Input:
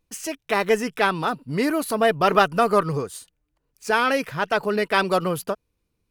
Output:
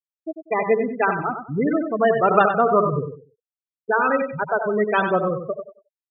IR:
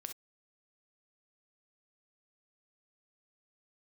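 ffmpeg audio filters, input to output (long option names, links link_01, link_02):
-filter_complex "[0:a]asplit=2[link_01][link_02];[link_02]aecho=0:1:71:0.447[link_03];[link_01][link_03]amix=inputs=2:normalize=0,afftfilt=real='re*gte(hypot(re,im),0.251)':imag='im*gte(hypot(re,im),0.251)':win_size=1024:overlap=0.75,asplit=2[link_04][link_05];[link_05]aecho=0:1:95|190|285:0.398|0.0916|0.0211[link_06];[link_04][link_06]amix=inputs=2:normalize=0,volume=1dB"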